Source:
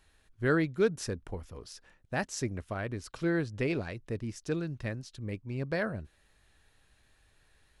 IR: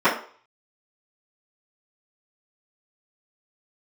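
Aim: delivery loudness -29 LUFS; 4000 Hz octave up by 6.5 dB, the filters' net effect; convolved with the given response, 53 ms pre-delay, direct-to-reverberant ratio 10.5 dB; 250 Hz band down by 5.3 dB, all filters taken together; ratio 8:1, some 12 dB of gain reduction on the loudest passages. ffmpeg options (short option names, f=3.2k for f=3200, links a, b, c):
-filter_complex "[0:a]equalizer=f=250:t=o:g=-8.5,equalizer=f=4k:t=o:g=8.5,acompressor=threshold=-36dB:ratio=8,asplit=2[a][b];[1:a]atrim=start_sample=2205,adelay=53[c];[b][c]afir=irnorm=-1:irlink=0,volume=-32dB[d];[a][d]amix=inputs=2:normalize=0,volume=12.5dB"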